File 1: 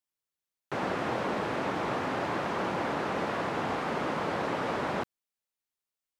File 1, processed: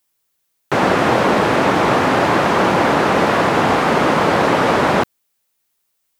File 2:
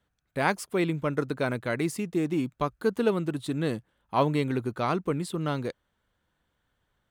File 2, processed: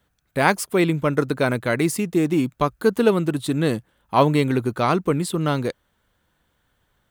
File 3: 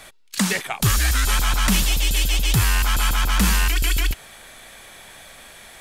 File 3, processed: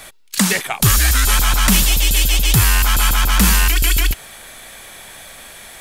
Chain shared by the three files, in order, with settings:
high shelf 10000 Hz +7.5 dB; normalise peaks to -2 dBFS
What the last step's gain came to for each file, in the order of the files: +16.5, +7.5, +4.5 dB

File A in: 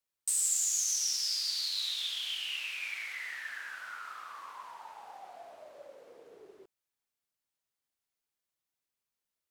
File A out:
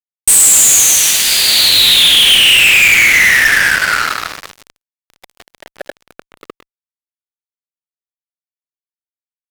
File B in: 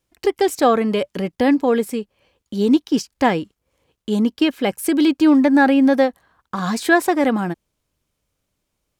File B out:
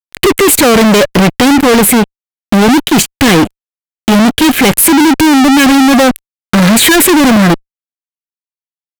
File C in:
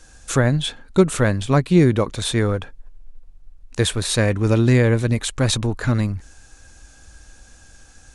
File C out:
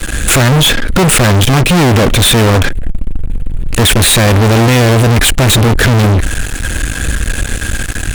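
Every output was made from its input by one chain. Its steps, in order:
fixed phaser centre 2300 Hz, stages 4; fuzz box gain 45 dB, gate -50 dBFS; normalise peaks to -2 dBFS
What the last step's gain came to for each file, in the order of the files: +8.5, +8.0, +6.5 dB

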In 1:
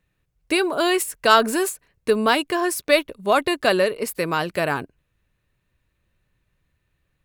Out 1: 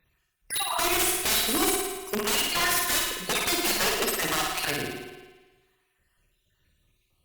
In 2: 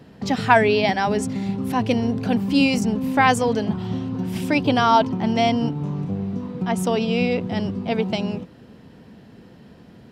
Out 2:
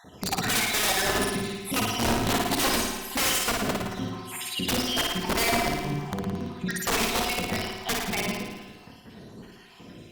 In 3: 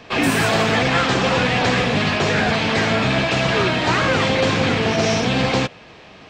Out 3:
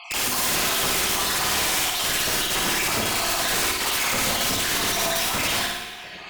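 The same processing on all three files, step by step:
random spectral dropouts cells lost 64%; high shelf 2000 Hz +10 dB; notches 50/100/150/200/250/300 Hz; in parallel at -1 dB: compressor 20:1, threshold -31 dBFS; on the sum: wrapped overs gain 15.5 dB; on a send: flutter echo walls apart 9.5 m, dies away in 1 s; on the sum: spring tank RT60 1.3 s, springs 58 ms, chirp 80 ms, DRR 7 dB; gain -5 dB; Opus 48 kbps 48000 Hz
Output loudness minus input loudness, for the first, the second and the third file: -4.0, -5.0, -3.5 LU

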